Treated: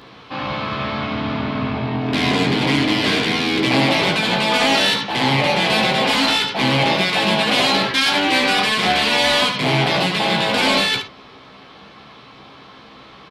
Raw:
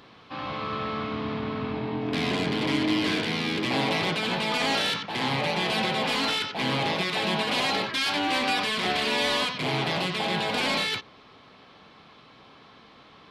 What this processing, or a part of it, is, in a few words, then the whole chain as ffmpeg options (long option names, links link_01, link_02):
slapback doubling: -filter_complex "[0:a]asplit=3[link_01][link_02][link_03];[link_02]adelay=15,volume=-5dB[link_04];[link_03]adelay=72,volume=-9.5dB[link_05];[link_01][link_04][link_05]amix=inputs=3:normalize=0,volume=8dB"